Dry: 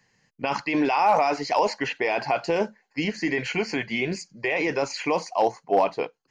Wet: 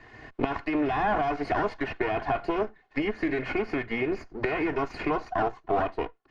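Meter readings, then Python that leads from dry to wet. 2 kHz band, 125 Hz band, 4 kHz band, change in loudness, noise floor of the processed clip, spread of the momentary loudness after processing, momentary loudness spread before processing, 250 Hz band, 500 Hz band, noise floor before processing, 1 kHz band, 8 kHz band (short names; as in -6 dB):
-4.0 dB, -1.0 dB, -10.0 dB, -4.0 dB, -63 dBFS, 5 LU, 9 LU, -1.0 dB, -4.0 dB, -70 dBFS, -5.0 dB, under -20 dB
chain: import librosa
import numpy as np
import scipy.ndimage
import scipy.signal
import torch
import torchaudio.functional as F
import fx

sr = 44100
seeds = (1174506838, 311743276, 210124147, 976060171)

y = fx.lower_of_two(x, sr, delay_ms=2.8)
y = fx.recorder_agc(y, sr, target_db=-17.0, rise_db_per_s=27.0, max_gain_db=30)
y = scipy.signal.sosfilt(scipy.signal.butter(2, 1800.0, 'lowpass', fs=sr, output='sos'), y)
y = fx.band_squash(y, sr, depth_pct=70)
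y = y * librosa.db_to_amplitude(-2.5)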